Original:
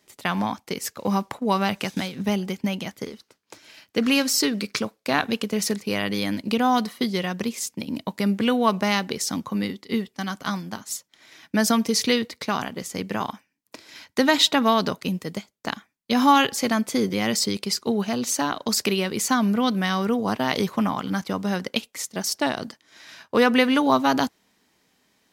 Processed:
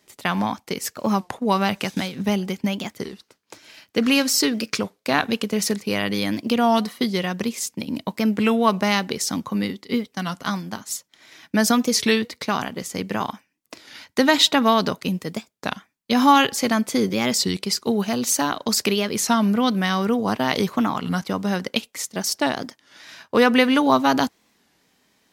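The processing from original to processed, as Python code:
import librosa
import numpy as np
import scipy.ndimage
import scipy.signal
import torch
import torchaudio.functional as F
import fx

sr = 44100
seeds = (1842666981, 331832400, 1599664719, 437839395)

y = fx.high_shelf(x, sr, hz=9600.0, db=7.0, at=(17.82, 18.56))
y = fx.record_warp(y, sr, rpm=33.33, depth_cents=160.0)
y = y * 10.0 ** (2.0 / 20.0)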